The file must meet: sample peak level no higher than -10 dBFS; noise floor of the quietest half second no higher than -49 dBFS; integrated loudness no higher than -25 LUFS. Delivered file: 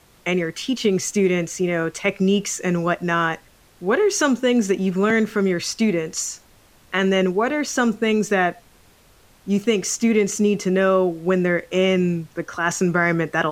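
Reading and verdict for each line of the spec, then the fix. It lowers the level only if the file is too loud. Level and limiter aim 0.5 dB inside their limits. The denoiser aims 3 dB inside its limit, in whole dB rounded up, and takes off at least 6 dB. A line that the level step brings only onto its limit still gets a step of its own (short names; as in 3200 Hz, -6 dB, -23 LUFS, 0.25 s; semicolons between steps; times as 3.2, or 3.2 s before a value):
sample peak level -5.5 dBFS: fail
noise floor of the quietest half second -53 dBFS: OK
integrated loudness -20.5 LUFS: fail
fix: gain -5 dB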